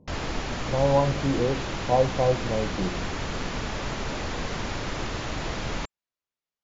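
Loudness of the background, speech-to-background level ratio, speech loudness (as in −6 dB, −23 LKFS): −32.0 LKFS, 6.0 dB, −26.0 LKFS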